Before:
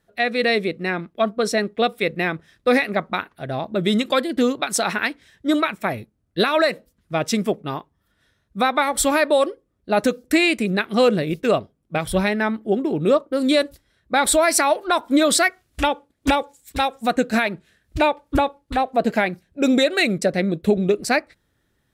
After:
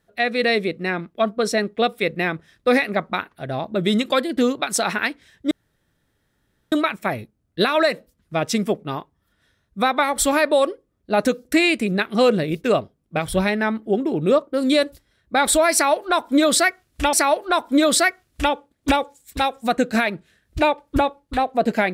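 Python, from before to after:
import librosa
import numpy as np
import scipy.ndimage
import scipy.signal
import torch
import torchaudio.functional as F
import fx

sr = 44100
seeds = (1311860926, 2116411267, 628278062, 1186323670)

y = fx.edit(x, sr, fx.insert_room_tone(at_s=5.51, length_s=1.21),
    fx.repeat(start_s=14.52, length_s=1.4, count=2), tone=tone)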